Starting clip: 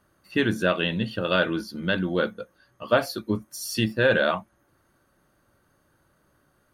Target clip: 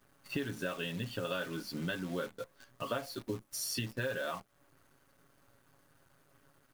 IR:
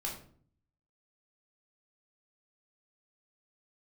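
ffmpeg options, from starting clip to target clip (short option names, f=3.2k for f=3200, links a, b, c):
-af "aecho=1:1:7.3:0.73,acompressor=threshold=-35dB:ratio=6,acrusher=bits=9:dc=4:mix=0:aa=0.000001"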